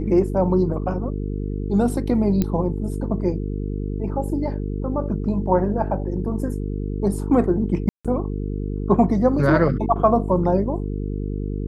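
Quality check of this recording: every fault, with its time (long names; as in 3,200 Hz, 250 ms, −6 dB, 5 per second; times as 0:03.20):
mains buzz 50 Hz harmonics 9 −26 dBFS
0:02.42: click −9 dBFS
0:07.89–0:08.05: drop-out 156 ms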